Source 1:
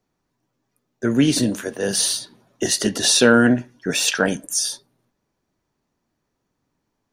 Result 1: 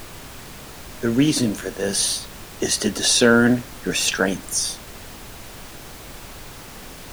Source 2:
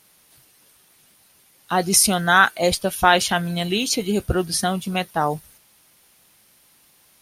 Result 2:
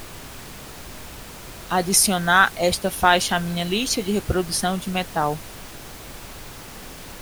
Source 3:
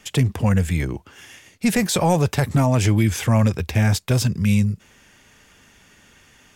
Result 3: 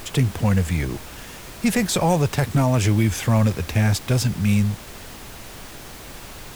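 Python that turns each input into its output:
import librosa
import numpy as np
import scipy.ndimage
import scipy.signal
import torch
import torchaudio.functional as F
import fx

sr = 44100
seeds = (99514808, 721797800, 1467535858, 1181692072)

y = fx.dmg_noise_colour(x, sr, seeds[0], colour='pink', level_db=-37.0)
y = F.gain(torch.from_numpy(y), -1.0).numpy()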